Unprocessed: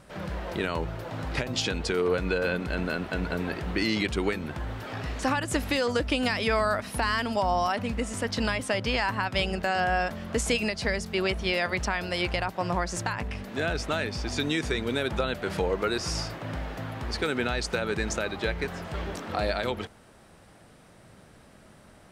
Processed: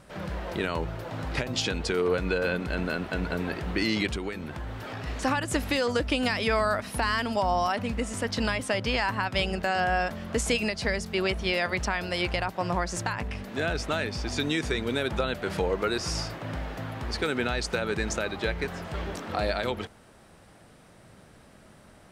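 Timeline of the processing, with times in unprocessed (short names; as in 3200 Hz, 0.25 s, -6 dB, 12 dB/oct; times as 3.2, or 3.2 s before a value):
4.16–5.07 compressor 2:1, threshold -33 dBFS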